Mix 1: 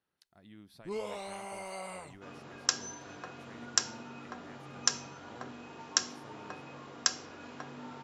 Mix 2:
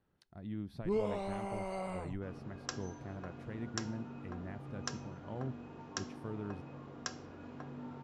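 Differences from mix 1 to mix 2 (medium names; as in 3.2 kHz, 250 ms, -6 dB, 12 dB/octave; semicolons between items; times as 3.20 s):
speech +5.0 dB; second sound -6.0 dB; master: add tilt EQ -3.5 dB/octave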